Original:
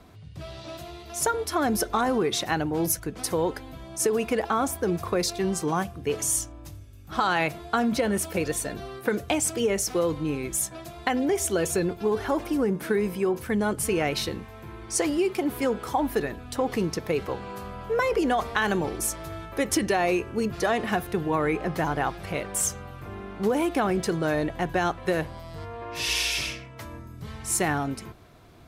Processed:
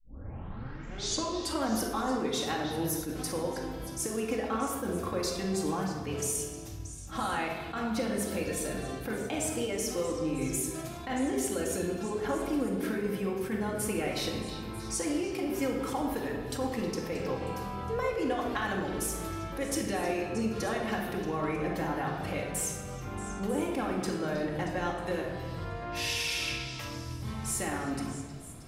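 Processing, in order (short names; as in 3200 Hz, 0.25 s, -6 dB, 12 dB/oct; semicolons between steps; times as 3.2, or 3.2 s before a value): tape start at the beginning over 1.71 s; compressor 4:1, threshold -29 dBFS, peak gain reduction 8.5 dB; on a send: delay with a stepping band-pass 0.315 s, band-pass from 3800 Hz, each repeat 0.7 oct, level -9 dB; on the sum: shoebox room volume 1400 m³, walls mixed, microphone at 2.2 m; attack slew limiter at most 150 dB/s; gain -4 dB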